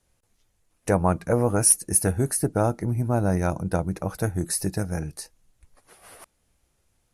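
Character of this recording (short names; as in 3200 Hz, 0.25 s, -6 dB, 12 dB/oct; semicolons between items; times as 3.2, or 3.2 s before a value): noise floor -71 dBFS; spectral tilt -4.0 dB/oct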